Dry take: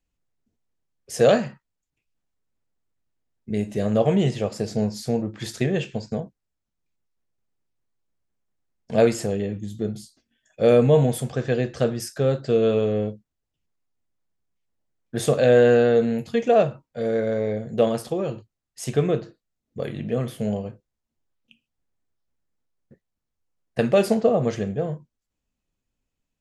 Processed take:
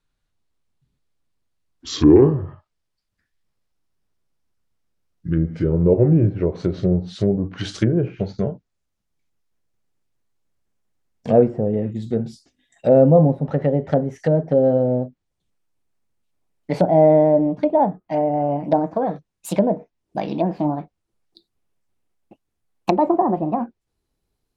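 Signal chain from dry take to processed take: gliding tape speed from 55% -> 160%; low-pass that closes with the level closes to 640 Hz, closed at -19.5 dBFS; trim +5 dB

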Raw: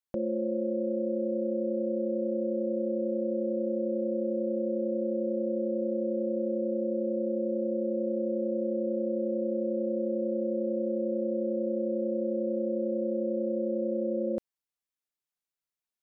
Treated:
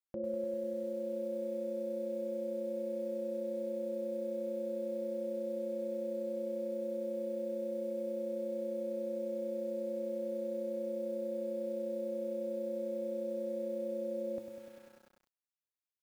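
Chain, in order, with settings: feedback comb 110 Hz, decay 0.56 s, harmonics odd, mix 70%; bit-crushed delay 99 ms, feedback 80%, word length 10-bit, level -7.5 dB

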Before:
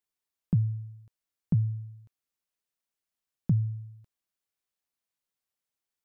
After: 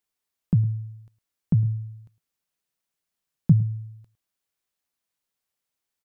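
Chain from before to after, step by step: 1.65–3.60 s: peaking EQ 160 Hz +6.5 dB 0.42 oct; delay 107 ms -19.5 dB; trim +4.5 dB

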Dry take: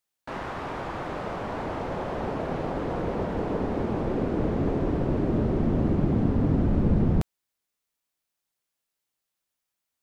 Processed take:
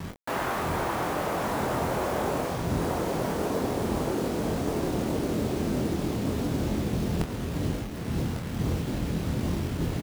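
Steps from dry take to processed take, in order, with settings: wind noise 160 Hz -29 dBFS; high-pass 41 Hz 24 dB/octave; bass shelf 150 Hz -6.5 dB; reverse; compression 16:1, threshold -33 dBFS, peak gain reduction 18 dB; reverse; bit crusher 8-bit; doubling 24 ms -6.5 dB; on a send: delay 1149 ms -8 dB; on the sum: trim +7.5 dB

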